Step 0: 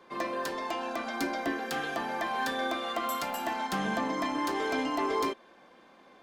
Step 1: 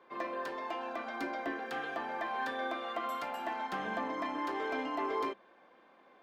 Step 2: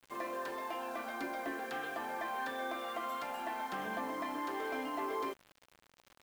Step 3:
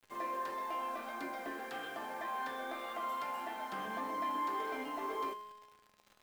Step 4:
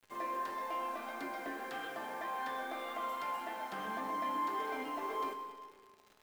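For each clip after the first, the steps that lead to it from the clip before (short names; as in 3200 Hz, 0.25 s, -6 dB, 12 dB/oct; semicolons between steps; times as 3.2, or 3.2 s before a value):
tone controls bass -8 dB, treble -14 dB; de-hum 66.17 Hz, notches 3; gain -4 dB
in parallel at +0.5 dB: limiter -33 dBFS, peak gain reduction 8.5 dB; on the sum: bit-crush 8-bit; gain -6.5 dB
flange 1.7 Hz, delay 8.7 ms, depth 7.9 ms, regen +73%; resonator 210 Hz, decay 1.2 s, mix 80%; gain +14.5 dB
reverb RT60 1.9 s, pre-delay 85 ms, DRR 9 dB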